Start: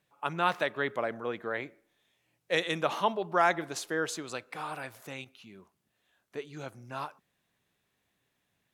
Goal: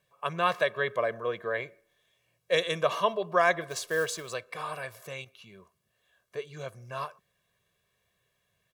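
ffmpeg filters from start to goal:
ffmpeg -i in.wav -filter_complex "[0:a]asettb=1/sr,asplit=3[link_01][link_02][link_03];[link_01]atrim=end=3.694[link_04];[link_02]atrim=start=3.69:end=4.34,asetpts=PTS-STARTPTS,afade=type=in:duration=0.004:curve=qsin,afade=type=out:start_time=0.646:duration=0.004:curve=qsin,acrusher=bits=4:mode=log:mix=0:aa=0.000001[link_05];[link_03]atrim=start=4.336[link_06];[link_04][link_05]acrossfade=duration=0.004:curve1=hsin:curve2=qsin[link_07];[link_07][link_06]acrossfade=duration=0.004:curve1=qsin:curve2=hsin,aecho=1:1:1.8:0.79" out.wav

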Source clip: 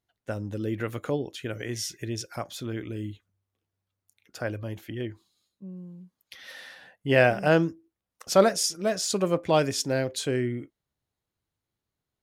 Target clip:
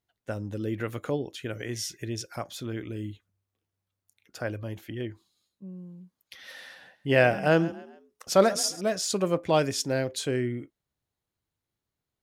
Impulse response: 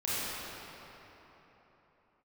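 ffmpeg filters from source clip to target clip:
-filter_complex "[0:a]asettb=1/sr,asplit=3[link_01][link_02][link_03];[link_01]atrim=end=6.454[link_04];[link_02]atrim=start=6.45:end=8.81,asetpts=PTS-STARTPTS,afade=type=in:duration=0.004:curve=qsin,afade=type=out:start_time=2.356:duration=0.004:curve=qsin,asplit=4[link_05][link_06][link_07][link_08];[link_06]adelay=137,afreqshift=32,volume=-18dB[link_09];[link_07]adelay=274,afreqshift=64,volume=-26dB[link_10];[link_08]adelay=411,afreqshift=96,volume=-33.9dB[link_11];[link_05][link_09][link_10][link_11]amix=inputs=4:normalize=0,atrim=end_sample=104076[link_12];[link_03]atrim=start=8.806[link_13];[link_04][link_12]acrossfade=duration=0.004:curve1=hsin:curve2=qsin[link_14];[link_14][link_13]acrossfade=duration=0.004:curve1=qsin:curve2=hsin,volume=-1dB"

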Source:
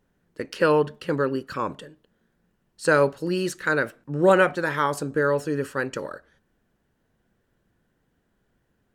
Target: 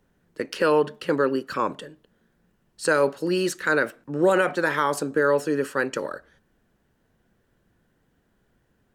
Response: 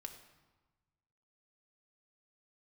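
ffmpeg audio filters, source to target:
-filter_complex "[0:a]acrossover=split=180|5200[link_01][link_02][link_03];[link_01]acompressor=threshold=-53dB:ratio=6[link_04];[link_02]alimiter=limit=-14dB:level=0:latency=1:release=38[link_05];[link_04][link_05][link_03]amix=inputs=3:normalize=0,volume=3dB"

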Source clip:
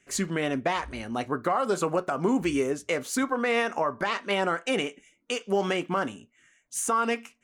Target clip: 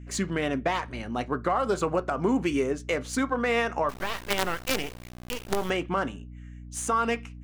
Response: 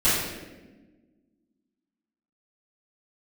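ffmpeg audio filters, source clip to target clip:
-filter_complex "[0:a]adynamicsmooth=sensitivity=7:basefreq=6200,aeval=exprs='val(0)+0.00891*(sin(2*PI*60*n/s)+sin(2*PI*2*60*n/s)/2+sin(2*PI*3*60*n/s)/3+sin(2*PI*4*60*n/s)/4+sin(2*PI*5*60*n/s)/5)':channel_layout=same,asettb=1/sr,asplit=3[link_01][link_02][link_03];[link_01]atrim=end=3.894[link_04];[link_02]atrim=start=3.89:end=5.7,asetpts=PTS-STARTPTS,afade=type=in:duration=0.004:curve=qsin,afade=type=out:start_time=1.806:duration=0.004:curve=qsin,acrusher=bits=4:dc=4:mix=0:aa=0.000001[link_05];[link_03]atrim=start=5.696[link_06];[link_04][link_05]acrossfade=duration=0.004:curve1=hsin:curve2=qsin[link_07];[link_07][link_06]acrossfade=duration=0.004:curve1=qsin:curve2=hsin"

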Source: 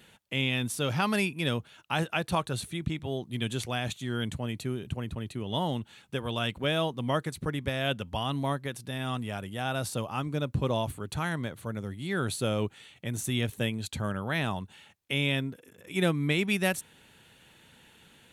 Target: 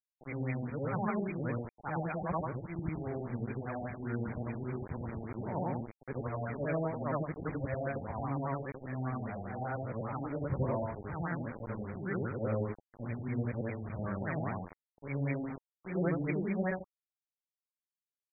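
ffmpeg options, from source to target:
ffmpeg -i in.wav -af "afftfilt=real='re':imag='-im':win_size=8192:overlap=0.75,aresample=16000,acrusher=bits=6:mix=0:aa=0.000001,aresample=44100,afftfilt=real='re*lt(b*sr/1024,830*pow(2500/830,0.5+0.5*sin(2*PI*5*pts/sr)))':imag='im*lt(b*sr/1024,830*pow(2500/830,0.5+0.5*sin(2*PI*5*pts/sr)))':win_size=1024:overlap=0.75" out.wav

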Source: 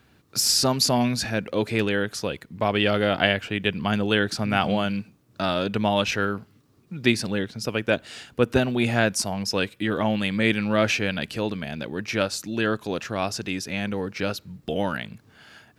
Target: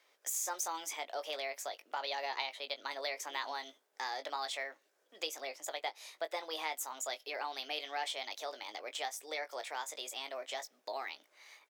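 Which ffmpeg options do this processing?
ffmpeg -i in.wav -filter_complex "[0:a]highpass=frequency=390:width=0.5412,highpass=frequency=390:width=1.3066,asplit=2[link_01][link_02];[link_02]adelay=26,volume=-9.5dB[link_03];[link_01][link_03]amix=inputs=2:normalize=0,asetrate=59535,aresample=44100,acompressor=threshold=-32dB:ratio=2,volume=-8dB" out.wav

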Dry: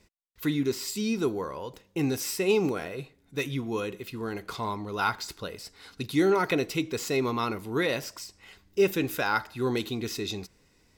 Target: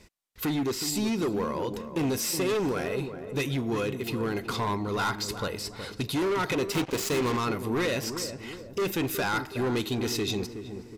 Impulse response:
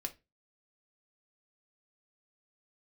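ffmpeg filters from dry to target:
-filter_complex "[0:a]asplit=2[link_01][link_02];[link_02]acompressor=threshold=-37dB:ratio=6,volume=3dB[link_03];[link_01][link_03]amix=inputs=2:normalize=0,asoftclip=type=hard:threshold=-24.5dB,aresample=32000,aresample=44100,asplit=2[link_04][link_05];[link_05]adelay=369,lowpass=frequency=870:poles=1,volume=-8dB,asplit=2[link_06][link_07];[link_07]adelay=369,lowpass=frequency=870:poles=1,volume=0.53,asplit=2[link_08][link_09];[link_09]adelay=369,lowpass=frequency=870:poles=1,volume=0.53,asplit=2[link_10][link_11];[link_11]adelay=369,lowpass=frequency=870:poles=1,volume=0.53,asplit=2[link_12][link_13];[link_13]adelay=369,lowpass=frequency=870:poles=1,volume=0.53,asplit=2[link_14][link_15];[link_15]adelay=369,lowpass=frequency=870:poles=1,volume=0.53[link_16];[link_04][link_06][link_08][link_10][link_12][link_14][link_16]amix=inputs=7:normalize=0,asettb=1/sr,asplit=3[link_17][link_18][link_19];[link_17]atrim=end=6.724[link_20];[link_18]atrim=start=6.72:end=7.37,asetpts=PTS-STARTPTS,afade=type=in:duration=0.004:curve=qsin,afade=type=out:start_time=0.646:duration=0.004:curve=qsin,aeval=exprs='0.1*(cos(1*acos(clip(val(0)/0.1,-1,1)))-cos(1*PI/2))+0.02*(cos(7*acos(clip(val(0)/0.1,-1,1)))-cos(7*PI/2))':channel_layout=same[link_21];[link_19]atrim=start=7.366[link_22];[link_20][link_21]acrossfade=duration=0.004:curve1=hsin:curve2=qsin[link_23];[link_23][link_22]acrossfade=duration=0.004:curve1=qsin:curve2=hsin"

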